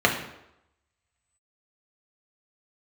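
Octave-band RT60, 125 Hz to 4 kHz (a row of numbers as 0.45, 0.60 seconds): 0.70, 0.75, 0.85, 0.85, 0.75, 0.65 seconds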